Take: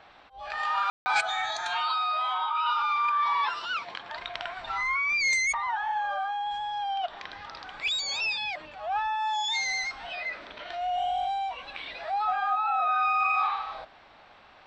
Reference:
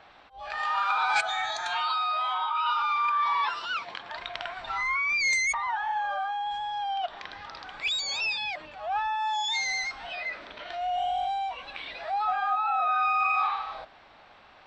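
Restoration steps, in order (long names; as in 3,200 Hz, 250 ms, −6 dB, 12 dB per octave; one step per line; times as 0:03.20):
ambience match 0:00.90–0:01.06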